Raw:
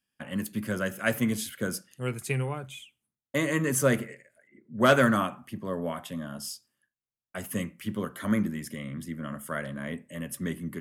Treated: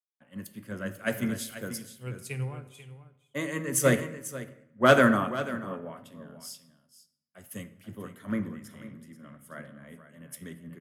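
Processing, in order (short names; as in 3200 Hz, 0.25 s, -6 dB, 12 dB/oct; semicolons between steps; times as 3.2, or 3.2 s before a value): echo 0.489 s -7.5 dB; on a send at -11 dB: reverb RT60 1.6 s, pre-delay 21 ms; on the sum: three-band expander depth 100%; gain -7 dB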